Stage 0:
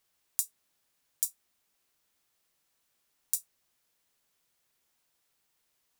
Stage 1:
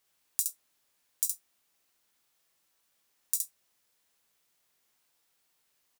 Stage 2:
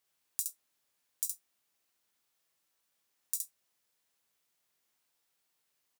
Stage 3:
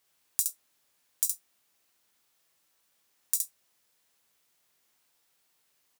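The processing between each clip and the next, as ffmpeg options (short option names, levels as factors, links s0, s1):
-filter_complex "[0:a]lowshelf=f=210:g=-4.5,asplit=2[s0][s1];[s1]aecho=0:1:19|67:0.447|0.631[s2];[s0][s2]amix=inputs=2:normalize=0"
-af "highpass=48,volume=0.562"
-af "aeval=exprs='0.447*(cos(1*acos(clip(val(0)/0.447,-1,1)))-cos(1*PI/2))+0.0282*(cos(2*acos(clip(val(0)/0.447,-1,1)))-cos(2*PI/2))':c=same,volume=2.24"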